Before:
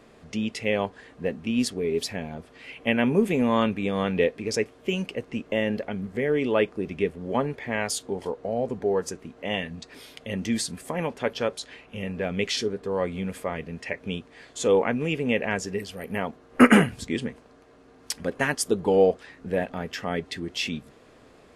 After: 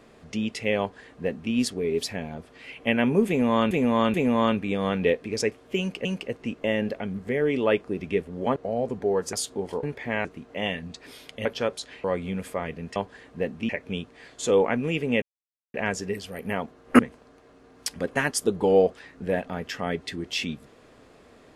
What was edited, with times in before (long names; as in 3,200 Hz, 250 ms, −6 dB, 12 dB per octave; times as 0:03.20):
0:00.80–0:01.53: duplicate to 0:13.86
0:03.28–0:03.71: repeat, 3 plays
0:04.93–0:05.19: repeat, 2 plays
0:07.44–0:07.86: swap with 0:08.36–0:09.13
0:10.33–0:11.25: remove
0:11.84–0:12.94: remove
0:15.39: splice in silence 0.52 s
0:16.64–0:17.23: remove